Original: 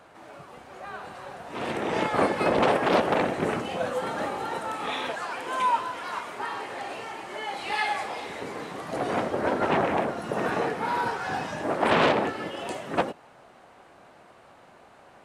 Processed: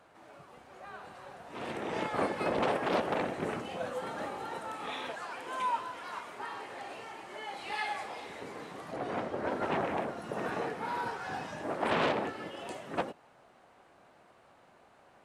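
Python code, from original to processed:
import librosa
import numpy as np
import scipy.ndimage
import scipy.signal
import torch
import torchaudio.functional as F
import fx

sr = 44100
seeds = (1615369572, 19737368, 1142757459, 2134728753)

y = fx.high_shelf(x, sr, hz=fx.line((8.91, 5300.0), (9.5, 10000.0)), db=-10.0, at=(8.91, 9.5), fade=0.02)
y = y * librosa.db_to_amplitude(-8.0)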